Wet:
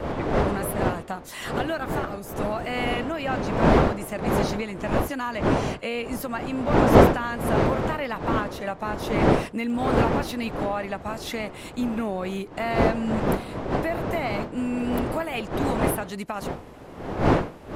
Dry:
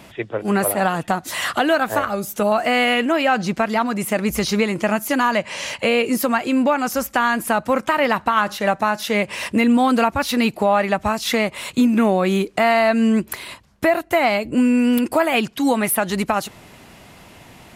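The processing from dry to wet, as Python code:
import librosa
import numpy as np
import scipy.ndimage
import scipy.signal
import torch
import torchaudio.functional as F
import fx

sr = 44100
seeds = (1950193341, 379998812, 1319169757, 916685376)

y = fx.dmg_wind(x, sr, seeds[0], corner_hz=590.0, level_db=-14.0)
y = fx.dmg_crackle(y, sr, seeds[1], per_s=fx.line((9.62, 45.0), (10.15, 10.0)), level_db=-23.0, at=(9.62, 10.15), fade=0.02)
y = y * librosa.db_to_amplitude(-11.5)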